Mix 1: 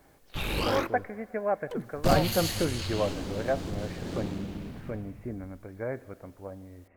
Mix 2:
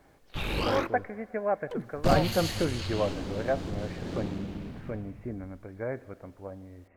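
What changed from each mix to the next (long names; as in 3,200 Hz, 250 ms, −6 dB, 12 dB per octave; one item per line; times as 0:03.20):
background: add high-shelf EQ 7,900 Hz −10 dB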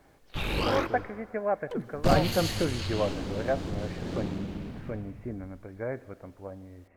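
background: send +11.5 dB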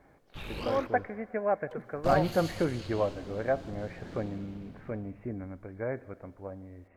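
background −10.0 dB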